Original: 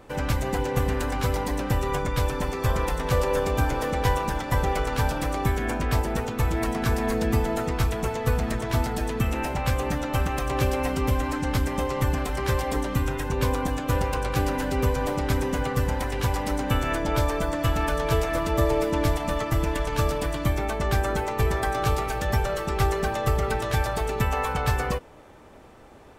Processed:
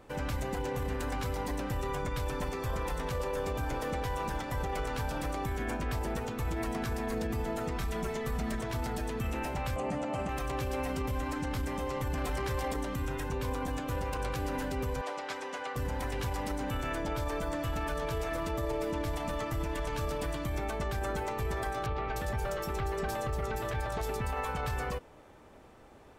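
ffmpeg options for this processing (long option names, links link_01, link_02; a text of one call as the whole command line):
ffmpeg -i in.wav -filter_complex "[0:a]asettb=1/sr,asplit=3[link_01][link_02][link_03];[link_01]atrim=end=7.764[link_04];[link_02]atrim=start=7.76:end=8.62,asetpts=PTS-STARTPTS,afade=type=in:duration=0.004:curve=qsin,afade=type=out:start_time=0.856:duration=0.004:curve=qsin,aecho=1:1:5.1:0.65,atrim=end_sample=37926[link_05];[link_03]atrim=start=8.616[link_06];[link_04][link_05]acrossfade=duration=0.004:curve1=hsin:curve2=qsin[link_07];[link_07][link_06]acrossfade=duration=0.004:curve1=qsin:curve2=hsin,asettb=1/sr,asplit=3[link_08][link_09][link_10];[link_08]atrim=end=9.764[link_11];[link_09]atrim=start=9.76:end=10.29,asetpts=PTS-STARTPTS,afade=type=in:duration=0.004:curve=qsin,afade=type=out:start_time=0.526:duration=0.004:curve=qsin,highpass=120,equalizer=frequency=200:width_type=q:width=4:gain=7,equalizer=frequency=660:width_type=q:width=4:gain=9,equalizer=frequency=1600:width_type=q:width=4:gain=-6,equalizer=frequency=3700:width_type=q:width=4:gain=-8,equalizer=frequency=5600:width_type=q:width=4:gain=-7,lowpass=frequency=8800:width=0.5412,lowpass=frequency=8800:width=1.3066[link_12];[link_10]atrim=start=10.286[link_13];[link_11][link_12]acrossfade=duration=0.004:curve1=hsin:curve2=qsin[link_14];[link_14][link_13]acrossfade=duration=0.004:curve1=qsin:curve2=hsin,asettb=1/sr,asplit=3[link_15][link_16][link_17];[link_15]atrim=end=15.014[link_18];[link_16]atrim=start=15.01:end=15.76,asetpts=PTS-STARTPTS,afade=type=in:duration=0.004:curve=qsin,afade=type=out:start_time=0.746:duration=0.004:curve=qsin,highpass=600,lowpass=6400[link_19];[link_17]atrim=start=15.756[link_20];[link_18][link_19]acrossfade=duration=0.004:curve1=hsin:curve2=qsin[link_21];[link_21][link_20]acrossfade=duration=0.004:curve1=qsin:curve2=hsin,asettb=1/sr,asplit=3[link_22][link_23][link_24];[link_22]atrim=end=21.864[link_25];[link_23]atrim=start=21.86:end=24.37,asetpts=PTS-STARTPTS,afade=type=in:duration=0.004:curve=qsin,afade=type=out:start_time=2.506:duration=0.004:curve=qsin,acrossover=split=3800[link_26][link_27];[link_27]adelay=300[link_28];[link_26][link_28]amix=inputs=2:normalize=0,atrim=end_sample=110691[link_29];[link_24]atrim=start=24.366[link_30];[link_25][link_29]acrossfade=duration=0.004:curve1=hsin:curve2=qsin[link_31];[link_31][link_30]acrossfade=duration=0.004:curve1=qsin:curve2=hsin,asplit=3[link_32][link_33][link_34];[link_32]atrim=end=12.142[link_35];[link_33]atrim=start=12.138:end=12.742,asetpts=PTS-STARTPTS,volume=8.5dB[link_36];[link_34]atrim=start=12.738[link_37];[link_35][link_36]acrossfade=duration=0.004:curve1=hsin:curve2=hsin[link_38];[link_38][link_37]acrossfade=duration=0.004:curve1=hsin:curve2=hsin,alimiter=limit=-19.5dB:level=0:latency=1:release=24,volume=-6dB" out.wav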